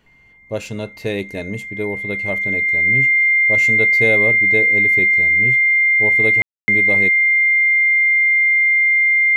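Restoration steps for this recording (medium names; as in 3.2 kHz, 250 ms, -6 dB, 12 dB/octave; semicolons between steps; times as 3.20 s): band-stop 2.1 kHz, Q 30; room tone fill 6.42–6.68 s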